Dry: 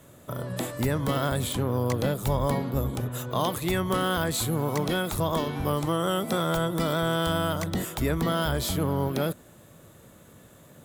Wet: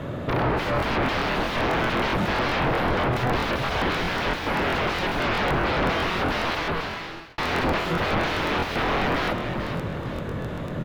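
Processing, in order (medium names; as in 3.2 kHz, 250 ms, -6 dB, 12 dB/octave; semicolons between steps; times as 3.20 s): 2.98–3.72 s: comb 2.3 ms, depth 60%; 5.22–5.86 s: treble shelf 2 kHz -11.5 dB; sine folder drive 18 dB, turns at -18.5 dBFS; distance through air 310 m; frequency-shifting echo 441 ms, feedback 45%, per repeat -66 Hz, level -8 dB; 6.48–7.38 s: fade out; crackling interface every 0.13 s, samples 1024, repeat, from 0.78 s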